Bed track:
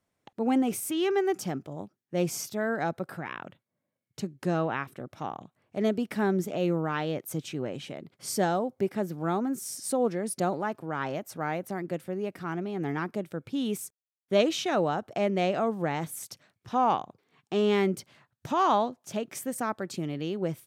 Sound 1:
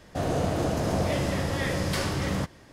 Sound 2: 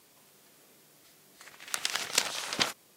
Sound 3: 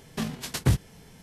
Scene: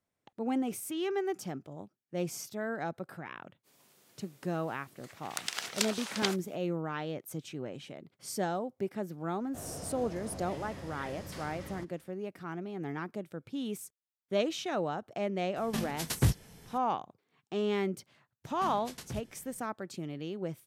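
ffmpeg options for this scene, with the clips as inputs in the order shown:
ffmpeg -i bed.wav -i cue0.wav -i cue1.wav -i cue2.wav -filter_complex "[3:a]asplit=2[link_01][link_02];[0:a]volume=-6.5dB[link_03];[link_01]highshelf=frequency=10000:gain=7[link_04];[link_02]alimiter=limit=-21dB:level=0:latency=1:release=48[link_05];[2:a]atrim=end=2.96,asetpts=PTS-STARTPTS,volume=-4.5dB,afade=type=in:duration=0.05,afade=type=out:start_time=2.91:duration=0.05,adelay=3630[link_06];[1:a]atrim=end=2.72,asetpts=PTS-STARTPTS,volume=-17dB,afade=type=in:duration=0.004:curve=hsin,afade=type=out:start_time=2.716:duration=0.004:curve=hsin,adelay=9390[link_07];[link_04]atrim=end=1.22,asetpts=PTS-STARTPTS,volume=-4dB,afade=type=in:duration=0.004:curve=hsin,afade=type=out:start_time=1.216:duration=0.004:curve=hsin,adelay=686196S[link_08];[link_05]atrim=end=1.22,asetpts=PTS-STARTPTS,volume=-11dB,afade=type=in:duration=0.004:curve=hsin,afade=type=out:start_time=1.216:duration=0.004:curve=hsin,adelay=813204S[link_09];[link_03][link_06][link_07][link_08][link_09]amix=inputs=5:normalize=0" out.wav

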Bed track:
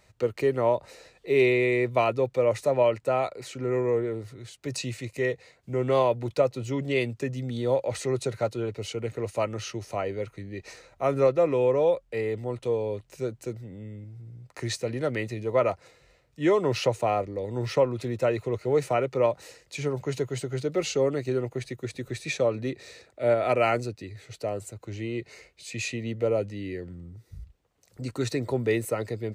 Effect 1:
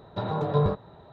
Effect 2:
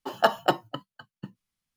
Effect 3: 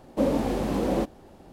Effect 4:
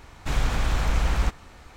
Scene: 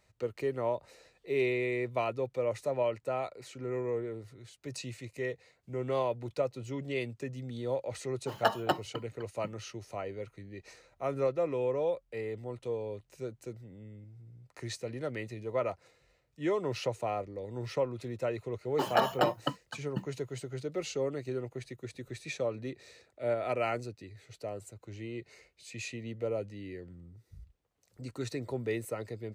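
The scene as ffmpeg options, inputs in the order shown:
ffmpeg -i bed.wav -i cue0.wav -i cue1.wav -filter_complex "[2:a]asplit=2[link_01][link_02];[0:a]volume=-8.5dB[link_03];[link_02]alimiter=level_in=17dB:limit=-1dB:release=50:level=0:latency=1[link_04];[link_01]atrim=end=1.76,asetpts=PTS-STARTPTS,volume=-6dB,afade=type=in:duration=0.1,afade=type=out:start_time=1.66:duration=0.1,adelay=8210[link_05];[link_04]atrim=end=1.76,asetpts=PTS-STARTPTS,volume=-13.5dB,afade=type=in:duration=0.004:curve=hsin,afade=type=out:start_time=1.756:duration=0.004:curve=hsin,adelay=18730[link_06];[link_03][link_05][link_06]amix=inputs=3:normalize=0" out.wav

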